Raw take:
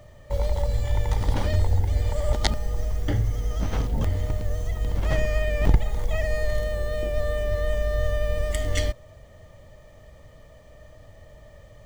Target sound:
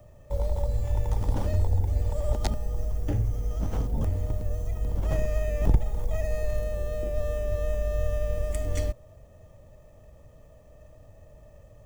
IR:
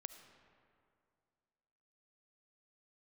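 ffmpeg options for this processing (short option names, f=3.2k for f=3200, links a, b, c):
-filter_complex "[0:a]equalizer=f=3.2k:t=o:w=2.2:g=-9.5,acrossover=split=260|1100|2500[a][b][c][d];[c]acrusher=samples=10:mix=1:aa=0.000001[e];[a][b][e][d]amix=inputs=4:normalize=0,volume=-2.5dB"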